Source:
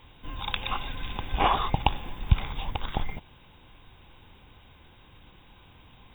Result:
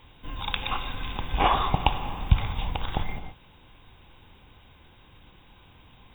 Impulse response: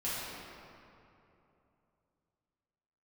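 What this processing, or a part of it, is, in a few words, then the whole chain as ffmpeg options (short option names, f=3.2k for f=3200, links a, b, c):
keyed gated reverb: -filter_complex "[0:a]asplit=3[a][b][c];[1:a]atrim=start_sample=2205[d];[b][d]afir=irnorm=-1:irlink=0[e];[c]apad=whole_len=270999[f];[e][f]sidechaingate=range=-33dB:threshold=-47dB:ratio=16:detection=peak,volume=-13dB[g];[a][g]amix=inputs=2:normalize=0"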